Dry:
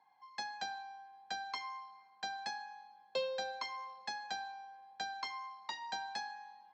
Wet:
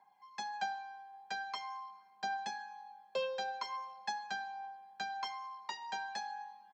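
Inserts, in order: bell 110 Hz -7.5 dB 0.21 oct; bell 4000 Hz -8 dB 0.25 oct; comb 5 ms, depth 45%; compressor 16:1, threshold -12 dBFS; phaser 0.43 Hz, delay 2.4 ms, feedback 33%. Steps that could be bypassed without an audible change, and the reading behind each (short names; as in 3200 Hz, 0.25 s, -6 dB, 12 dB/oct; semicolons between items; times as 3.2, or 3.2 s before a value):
compressor, threshold -12 dBFS: input peak -26.0 dBFS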